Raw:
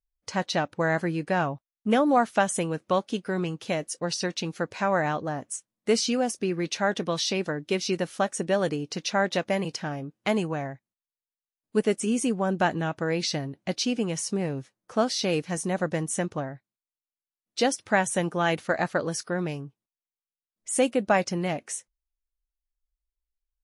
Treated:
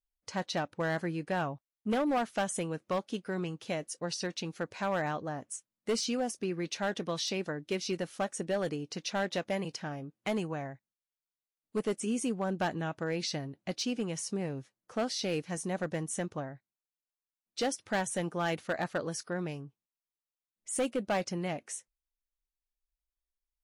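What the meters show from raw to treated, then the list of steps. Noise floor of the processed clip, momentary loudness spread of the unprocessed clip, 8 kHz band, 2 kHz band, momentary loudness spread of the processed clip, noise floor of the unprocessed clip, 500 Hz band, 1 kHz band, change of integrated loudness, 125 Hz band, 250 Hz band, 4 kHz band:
below −85 dBFS, 8 LU, −6.5 dB, −8.0 dB, 8 LU, below −85 dBFS, −7.5 dB, −8.0 dB, −7.5 dB, −6.5 dB, −7.0 dB, −6.5 dB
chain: hard clipping −18.5 dBFS, distortion −15 dB
level −6.5 dB

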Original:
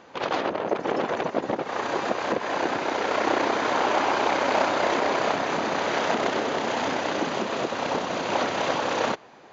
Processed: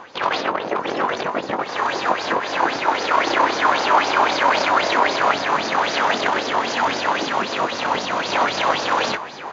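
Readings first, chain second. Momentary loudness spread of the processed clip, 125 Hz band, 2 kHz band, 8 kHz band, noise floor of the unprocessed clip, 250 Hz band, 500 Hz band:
6 LU, +1.0 dB, +7.5 dB, can't be measured, −49 dBFS, +1.0 dB, +2.0 dB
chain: reversed playback
upward compression, threshold −26 dBFS
reversed playback
double-tracking delay 21 ms −7 dB
auto-filter bell 3.8 Hz 940–5,400 Hz +15 dB

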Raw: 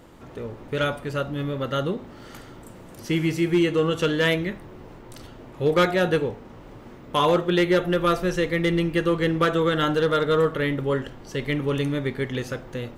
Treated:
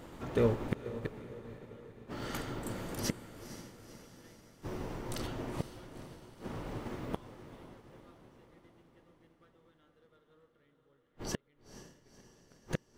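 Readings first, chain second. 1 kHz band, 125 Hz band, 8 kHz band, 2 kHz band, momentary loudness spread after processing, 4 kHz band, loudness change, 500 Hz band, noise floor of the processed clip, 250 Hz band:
−19.5 dB, −14.5 dB, −5.0 dB, −21.5 dB, 18 LU, −19.0 dB, −16.0 dB, −18.0 dB, −71 dBFS, −17.0 dB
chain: gate with flip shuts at −23 dBFS, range −41 dB
in parallel at −3 dB: soft clipping −29 dBFS, distortion −16 dB
on the sum: feedback delay with all-pass diffusion 491 ms, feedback 68%, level −8 dB
expander for the loud parts 1.5 to 1, over −57 dBFS
level +3.5 dB

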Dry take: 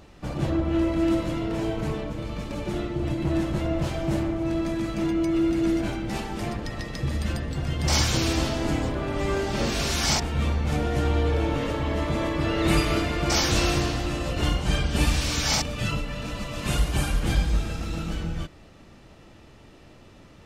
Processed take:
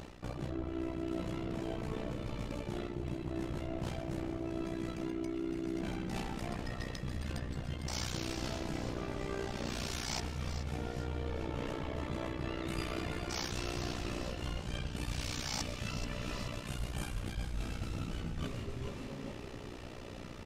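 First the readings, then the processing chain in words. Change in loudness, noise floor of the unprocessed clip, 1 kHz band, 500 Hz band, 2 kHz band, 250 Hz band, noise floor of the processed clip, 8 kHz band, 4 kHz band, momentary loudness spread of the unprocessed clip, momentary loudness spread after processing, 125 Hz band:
−13.5 dB, −50 dBFS, −12.5 dB, −12.5 dB, −13.0 dB, −13.0 dB, −45 dBFS, −14.0 dB, −13.5 dB, 9 LU, 3 LU, −12.5 dB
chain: amplitude modulation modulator 61 Hz, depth 75%
echo with shifted repeats 430 ms, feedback 42%, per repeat −150 Hz, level −12 dB
reversed playback
downward compressor 6 to 1, threshold −43 dBFS, peak gain reduction 23 dB
reversed playback
level +7 dB

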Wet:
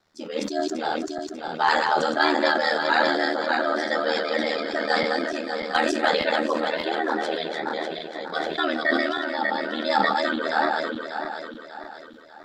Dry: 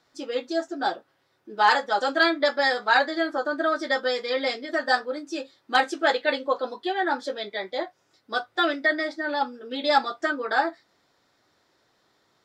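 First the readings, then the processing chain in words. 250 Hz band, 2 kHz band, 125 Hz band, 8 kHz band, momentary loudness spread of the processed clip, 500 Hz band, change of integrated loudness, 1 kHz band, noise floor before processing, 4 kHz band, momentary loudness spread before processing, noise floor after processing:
+3.5 dB, +1.0 dB, can't be measured, +4.0 dB, 11 LU, +2.0 dB, +1.0 dB, +1.0 dB, −69 dBFS, +1.0 dB, 11 LU, −43 dBFS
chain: feedback delay that plays each chunk backwards 296 ms, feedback 64%, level −4 dB
low-shelf EQ 130 Hz +8 dB
ring modulation 39 Hz
level that may fall only so fast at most 30 dB per second

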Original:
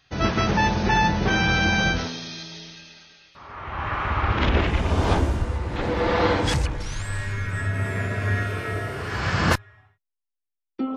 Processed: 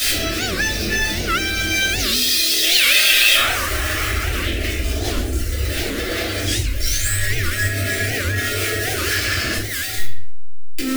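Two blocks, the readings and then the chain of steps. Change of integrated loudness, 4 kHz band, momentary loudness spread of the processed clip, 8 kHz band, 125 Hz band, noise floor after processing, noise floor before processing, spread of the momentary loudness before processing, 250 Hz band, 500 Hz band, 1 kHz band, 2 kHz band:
+6.0 dB, +13.5 dB, 11 LU, +17.5 dB, 0.0 dB, −24 dBFS, −83 dBFS, 13 LU, −0.5 dB, 0.0 dB, −4.0 dB, +7.0 dB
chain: converter with a step at zero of −24 dBFS
reverb reduction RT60 1.8 s
phaser with its sweep stopped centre 390 Hz, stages 4
downward compressor, threshold −29 dBFS, peak gain reduction 11 dB
brickwall limiter −26.5 dBFS, peak gain reduction 7 dB
low-shelf EQ 120 Hz +9 dB
notch filter 510 Hz, Q 12
gain on a spectral selection 0:02.62–0:03.50, 500–3,800 Hz +7 dB
spectral tilt +2.5 dB per octave
rectangular room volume 150 cubic metres, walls mixed, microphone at 2.9 metres
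wow of a warped record 78 rpm, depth 250 cents
level +2.5 dB

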